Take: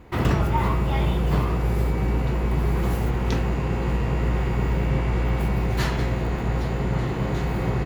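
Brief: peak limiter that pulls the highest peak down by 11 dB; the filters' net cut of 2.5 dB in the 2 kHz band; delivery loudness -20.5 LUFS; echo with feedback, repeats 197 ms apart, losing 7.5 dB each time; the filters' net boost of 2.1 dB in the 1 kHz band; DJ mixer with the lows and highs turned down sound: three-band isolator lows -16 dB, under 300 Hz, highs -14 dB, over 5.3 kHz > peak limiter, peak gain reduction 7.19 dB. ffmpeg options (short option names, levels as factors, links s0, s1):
-filter_complex "[0:a]equalizer=f=1000:t=o:g=3.5,equalizer=f=2000:t=o:g=-4,alimiter=limit=0.119:level=0:latency=1,acrossover=split=300 5300:gain=0.158 1 0.2[s0][s1][s2];[s0][s1][s2]amix=inputs=3:normalize=0,aecho=1:1:197|394|591|788|985:0.422|0.177|0.0744|0.0312|0.0131,volume=5.96,alimiter=limit=0.266:level=0:latency=1"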